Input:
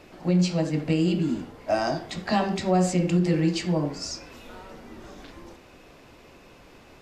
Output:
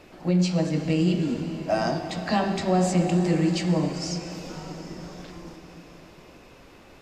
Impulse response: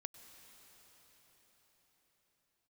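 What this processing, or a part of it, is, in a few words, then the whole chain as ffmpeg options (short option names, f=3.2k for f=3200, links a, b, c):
cathedral: -filter_complex "[1:a]atrim=start_sample=2205[a];[0:a][a]afir=irnorm=-1:irlink=0,volume=5dB"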